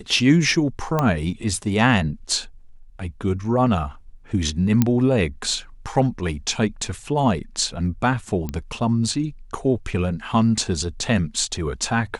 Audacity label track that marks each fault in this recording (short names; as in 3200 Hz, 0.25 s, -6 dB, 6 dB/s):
0.990000	0.990000	pop -8 dBFS
4.820000	4.820000	pop -4 dBFS
8.490000	8.490000	pop -14 dBFS